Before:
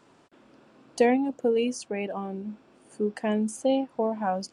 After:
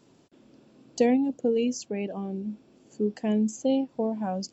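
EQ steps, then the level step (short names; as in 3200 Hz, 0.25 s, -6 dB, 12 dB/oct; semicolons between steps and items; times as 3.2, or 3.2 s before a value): brick-wall FIR low-pass 7800 Hz; low shelf 60 Hz -6 dB; bell 1300 Hz -14.5 dB 2.6 oct; +5.0 dB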